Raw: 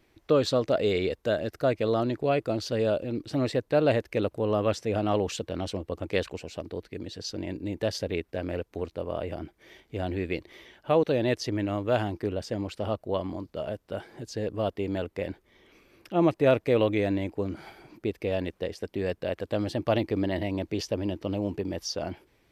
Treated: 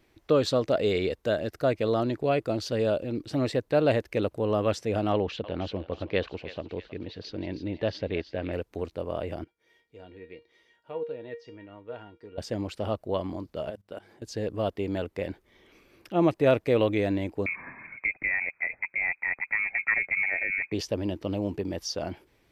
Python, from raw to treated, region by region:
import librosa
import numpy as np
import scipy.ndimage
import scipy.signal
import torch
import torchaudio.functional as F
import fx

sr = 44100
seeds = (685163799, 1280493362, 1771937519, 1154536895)

y = fx.chain(x, sr, fx.lowpass(hz=4000.0, slope=24),
    fx.echo_thinned(ms=318, feedback_pct=49, hz=1200.0, wet_db=-10.5), at=(5.12, 8.53))
y = fx.chain(y, sr, fx.highpass(hz=99.0, slope=6),
    fx.env_lowpass_down(base_hz=2800.0, full_db=-25.5),
    fx.comb_fb(f0_hz=470.0, decay_s=0.24, harmonics='all', damping=0.0, mix_pct=90), at=(9.44, 12.38))
y = fx.chain(y, sr, fx.low_shelf(hz=90.0, db=-10.5),
    fx.hum_notches(base_hz=50, count=4),
    fx.level_steps(step_db=19), at=(13.7, 14.22))
y = fx.chain(y, sr, fx.freq_invert(carrier_hz=2500),
    fx.band_squash(depth_pct=40), at=(17.46, 20.72))